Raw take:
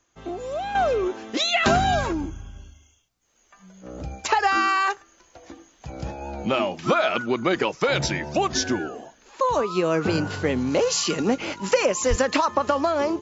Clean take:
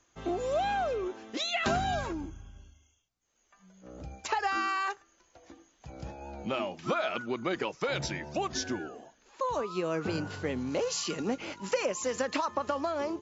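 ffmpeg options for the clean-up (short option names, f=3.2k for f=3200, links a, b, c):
-filter_complex "[0:a]asplit=3[a][b][c];[a]afade=t=out:st=12.09:d=0.02[d];[b]highpass=f=140:w=0.5412,highpass=f=140:w=1.3066,afade=t=in:st=12.09:d=0.02,afade=t=out:st=12.21:d=0.02[e];[c]afade=t=in:st=12.21:d=0.02[f];[d][e][f]amix=inputs=3:normalize=0,asetnsamples=n=441:p=0,asendcmd='0.75 volume volume -9.5dB',volume=0dB"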